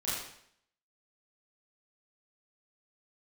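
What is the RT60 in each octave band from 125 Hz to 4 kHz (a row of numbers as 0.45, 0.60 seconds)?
0.65, 0.70, 0.70, 0.65, 0.65, 0.65 seconds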